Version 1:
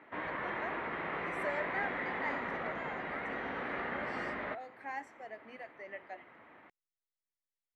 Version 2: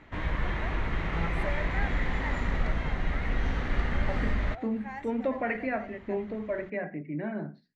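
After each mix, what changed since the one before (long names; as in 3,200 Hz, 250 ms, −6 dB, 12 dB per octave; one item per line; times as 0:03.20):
second voice: unmuted
background: remove band-pass filter 360–2,100 Hz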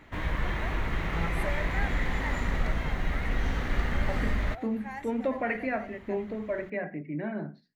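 master: remove high-frequency loss of the air 81 metres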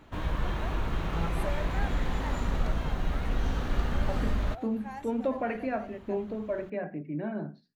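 master: add parametric band 2,000 Hz −12 dB 0.42 octaves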